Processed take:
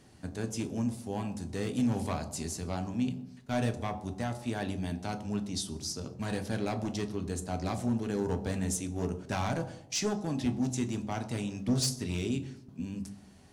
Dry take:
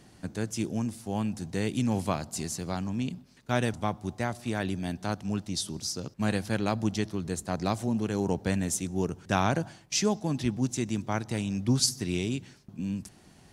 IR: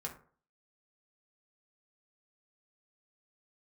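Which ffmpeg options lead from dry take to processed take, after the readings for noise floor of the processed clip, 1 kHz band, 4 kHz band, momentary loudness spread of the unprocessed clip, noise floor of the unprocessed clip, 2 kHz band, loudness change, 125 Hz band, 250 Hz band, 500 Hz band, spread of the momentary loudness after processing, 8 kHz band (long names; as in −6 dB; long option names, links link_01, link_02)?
−53 dBFS, −4.5 dB, −4.5 dB, 7 LU, −57 dBFS, −5.5 dB, −3.5 dB, −3.0 dB, −2.5 dB, −3.0 dB, 6 LU, −4.0 dB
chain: -filter_complex "[0:a]asoftclip=type=hard:threshold=-22dB,asplit=2[link_01][link_02];[1:a]atrim=start_sample=2205,asetrate=23373,aresample=44100[link_03];[link_02][link_03]afir=irnorm=-1:irlink=0,volume=-2.5dB[link_04];[link_01][link_04]amix=inputs=2:normalize=0,volume=-8dB"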